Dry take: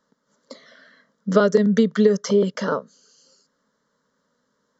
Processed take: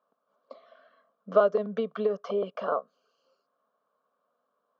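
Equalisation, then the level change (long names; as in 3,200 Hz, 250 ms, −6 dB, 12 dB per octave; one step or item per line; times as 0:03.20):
formant filter a
low-pass filter 3,600 Hz 12 dB per octave
+7.0 dB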